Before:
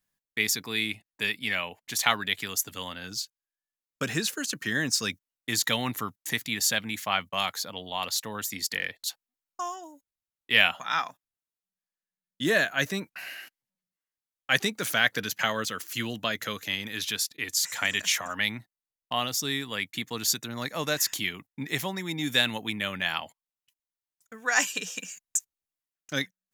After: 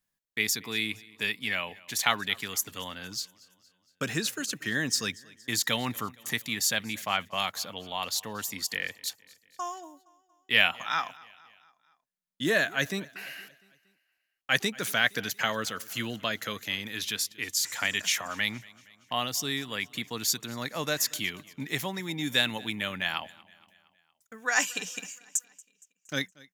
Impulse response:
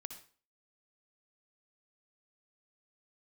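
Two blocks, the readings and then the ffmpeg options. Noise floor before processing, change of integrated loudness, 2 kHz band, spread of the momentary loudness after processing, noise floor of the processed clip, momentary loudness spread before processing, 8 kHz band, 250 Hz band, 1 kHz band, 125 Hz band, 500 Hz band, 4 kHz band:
under -85 dBFS, -1.5 dB, -1.5 dB, 11 LU, -78 dBFS, 11 LU, -1.5 dB, -1.5 dB, -1.5 dB, -1.5 dB, -1.5 dB, -1.5 dB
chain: -af "aecho=1:1:233|466|699|932:0.0708|0.0389|0.0214|0.0118,volume=-1.5dB"

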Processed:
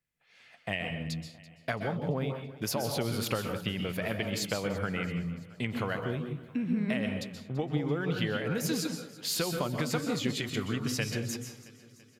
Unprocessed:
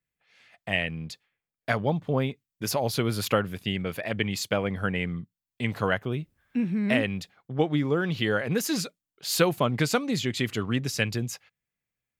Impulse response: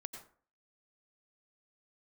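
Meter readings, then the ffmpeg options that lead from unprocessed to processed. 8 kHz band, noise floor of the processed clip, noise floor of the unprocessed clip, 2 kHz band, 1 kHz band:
-3.0 dB, -59 dBFS, under -85 dBFS, -6.0 dB, -6.5 dB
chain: -filter_complex "[0:a]acompressor=threshold=-29dB:ratio=6,aecho=1:1:335|670|1005|1340|1675:0.112|0.0628|0.0352|0.0197|0.011[a];[1:a]atrim=start_sample=2205,afade=t=out:st=0.22:d=0.01,atrim=end_sample=10143,asetrate=30870,aresample=44100[b];[a][b]afir=irnorm=-1:irlink=0,volume=2.5dB"

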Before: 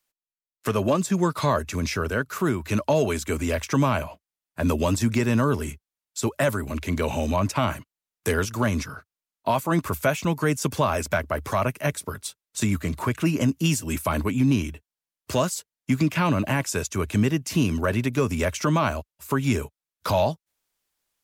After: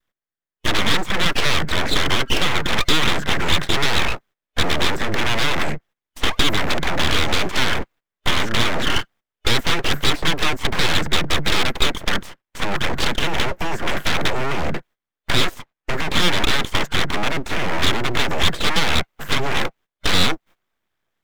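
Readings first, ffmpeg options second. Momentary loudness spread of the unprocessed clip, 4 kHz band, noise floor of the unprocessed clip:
9 LU, +17.0 dB, under -85 dBFS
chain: -filter_complex "[0:a]asplit=2[a][b];[b]acompressor=threshold=-31dB:ratio=16,volume=-2.5dB[c];[a][c]amix=inputs=2:normalize=0,alimiter=limit=-17dB:level=0:latency=1:release=77,adynamicequalizer=threshold=0.0112:dfrequency=740:dqfactor=1.6:tfrequency=740:tqfactor=1.6:attack=5:release=100:ratio=0.375:range=2:mode=boostabove:tftype=bell,acrossover=split=330|2300[d][e][f];[d]acompressor=threshold=-39dB:ratio=4[g];[e]acompressor=threshold=-31dB:ratio=4[h];[f]acompressor=threshold=-47dB:ratio=4[i];[g][h][i]amix=inputs=3:normalize=0,acrossover=split=1300[j][k];[j]aeval=exprs='0.126*sin(PI/2*6.31*val(0)/0.126)':c=same[l];[l][k]amix=inputs=2:normalize=0,superequalizer=9b=0.355:11b=3.55:16b=0.282,aeval=exprs='abs(val(0))':c=same,agate=range=-17dB:threshold=-46dB:ratio=16:detection=peak,volume=4dB"

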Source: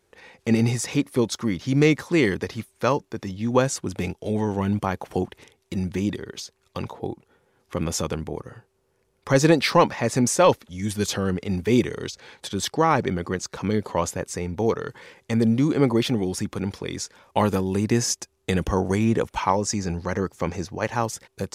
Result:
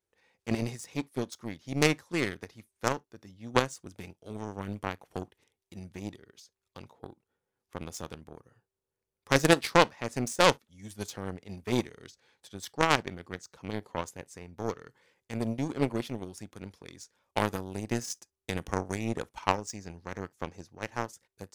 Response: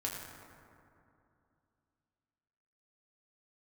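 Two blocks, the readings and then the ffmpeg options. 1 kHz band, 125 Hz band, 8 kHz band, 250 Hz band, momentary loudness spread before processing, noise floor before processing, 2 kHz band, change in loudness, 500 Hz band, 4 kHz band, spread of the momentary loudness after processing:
-6.0 dB, -11.0 dB, -10.0 dB, -11.0 dB, 13 LU, -69 dBFS, -3.5 dB, -7.5 dB, -9.0 dB, -4.5 dB, 22 LU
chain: -filter_complex "[0:a]aeval=exprs='0.531*(cos(1*acos(clip(val(0)/0.531,-1,1)))-cos(1*PI/2))+0.211*(cos(3*acos(clip(val(0)/0.531,-1,1)))-cos(3*PI/2))+0.0668*(cos(5*acos(clip(val(0)/0.531,-1,1)))-cos(5*PI/2))+0.0266*(cos(7*acos(clip(val(0)/0.531,-1,1)))-cos(7*PI/2))':c=same,highshelf=f=5.9k:g=6,asplit=2[a][b];[1:a]atrim=start_sample=2205,atrim=end_sample=3087[c];[b][c]afir=irnorm=-1:irlink=0,volume=-17.5dB[d];[a][d]amix=inputs=2:normalize=0,volume=-1dB"

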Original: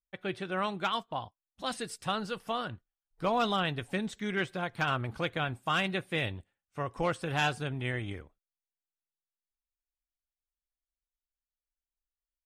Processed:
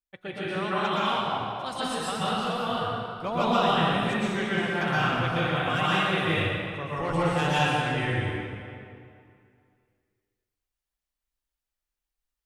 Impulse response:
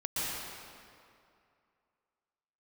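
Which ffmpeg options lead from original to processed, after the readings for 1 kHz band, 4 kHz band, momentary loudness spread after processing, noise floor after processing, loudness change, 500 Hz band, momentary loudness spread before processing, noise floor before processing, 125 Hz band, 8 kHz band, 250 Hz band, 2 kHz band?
+7.5 dB, +6.5 dB, 9 LU, under -85 dBFS, +6.5 dB, +6.5 dB, 10 LU, under -85 dBFS, +7.5 dB, +5.0 dB, +7.0 dB, +6.5 dB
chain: -filter_complex "[1:a]atrim=start_sample=2205[a];[0:a][a]afir=irnorm=-1:irlink=0"

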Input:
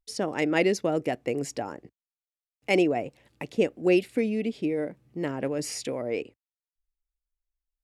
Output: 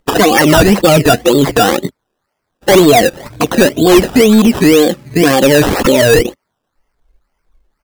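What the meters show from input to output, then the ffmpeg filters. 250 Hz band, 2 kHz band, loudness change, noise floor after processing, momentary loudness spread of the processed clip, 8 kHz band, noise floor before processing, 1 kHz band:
+18.5 dB, +18.5 dB, +18.5 dB, -72 dBFS, 8 LU, +21.5 dB, under -85 dBFS, +22.0 dB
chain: -af "afftfilt=real='re*pow(10,23/40*sin(2*PI*(1.7*log(max(b,1)*sr/1024/100)/log(2)-(2.2)*(pts-256)/sr)))':imag='im*pow(10,23/40*sin(2*PI*(1.7*log(max(b,1)*sr/1024/100)/log(2)-(2.2)*(pts-256)/sr)))':win_size=1024:overlap=0.75,aresample=11025,asoftclip=type=tanh:threshold=-16.5dB,aresample=44100,acrusher=samples=16:mix=1:aa=0.000001:lfo=1:lforange=9.6:lforate=2,alimiter=level_in=26.5dB:limit=-1dB:release=50:level=0:latency=1,volume=-1dB"

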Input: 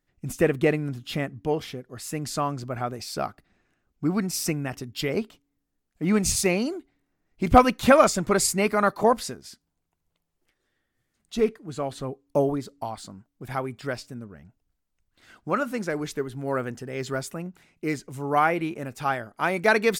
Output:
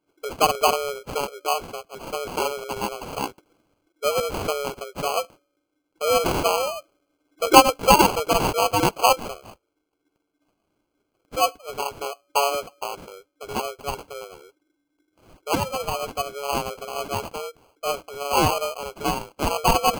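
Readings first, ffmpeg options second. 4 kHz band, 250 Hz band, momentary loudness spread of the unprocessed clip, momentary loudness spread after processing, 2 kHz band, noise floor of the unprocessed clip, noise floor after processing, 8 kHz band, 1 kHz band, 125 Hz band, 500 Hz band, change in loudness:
+8.5 dB, -4.0 dB, 15 LU, 15 LU, -0.5 dB, -78 dBFS, -76 dBFS, +2.0 dB, +5.0 dB, -3.0 dB, +0.5 dB, +2.0 dB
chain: -af "afftfilt=real='real(if(lt(b,736),b+184*(1-2*mod(floor(b/184),2)),b),0)':imag='imag(if(lt(b,736),b+184*(1-2*mod(floor(b/184),2)),b),0)':win_size=2048:overlap=0.75,acrusher=samples=24:mix=1:aa=0.000001,volume=1.5dB"

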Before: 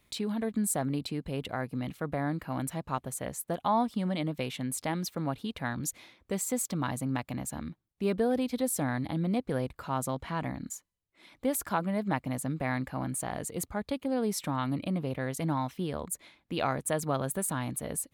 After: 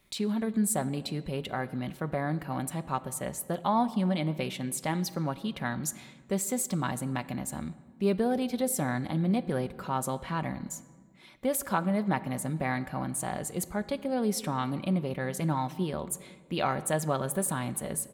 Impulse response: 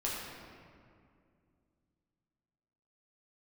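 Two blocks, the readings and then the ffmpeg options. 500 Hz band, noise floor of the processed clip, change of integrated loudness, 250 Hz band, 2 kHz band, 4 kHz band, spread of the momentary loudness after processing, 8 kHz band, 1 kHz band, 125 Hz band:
+1.0 dB, -54 dBFS, +1.5 dB, +1.5 dB, +1.5 dB, +1.5 dB, 7 LU, +1.5 dB, +1.5 dB, +1.5 dB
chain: -filter_complex "[0:a]aecho=1:1:5.3:0.35,asplit=2[a][b];[1:a]atrim=start_sample=2205,asetrate=70560,aresample=44100[c];[b][c]afir=irnorm=-1:irlink=0,volume=-13.5dB[d];[a][d]amix=inputs=2:normalize=0"

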